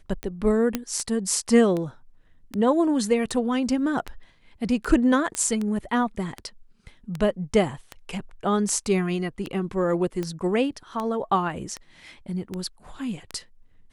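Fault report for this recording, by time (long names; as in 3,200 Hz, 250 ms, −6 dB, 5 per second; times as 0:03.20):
scratch tick 78 rpm −17 dBFS
0:00.75: click −9 dBFS
0:05.35: click −13 dBFS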